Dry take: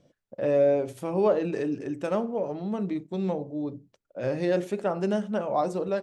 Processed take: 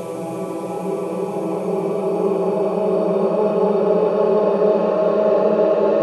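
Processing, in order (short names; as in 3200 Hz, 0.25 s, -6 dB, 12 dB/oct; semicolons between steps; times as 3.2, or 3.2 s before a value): Schroeder reverb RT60 0.46 s, DRR 3.5 dB; Paulstretch 19×, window 0.50 s, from 1.03; gain +4 dB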